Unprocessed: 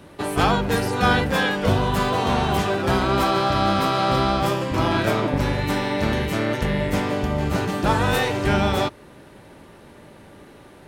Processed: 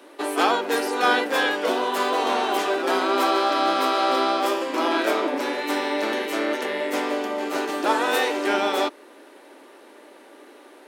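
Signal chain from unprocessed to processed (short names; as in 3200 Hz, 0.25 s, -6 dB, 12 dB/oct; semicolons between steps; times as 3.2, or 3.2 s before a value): steep high-pass 270 Hz 48 dB/oct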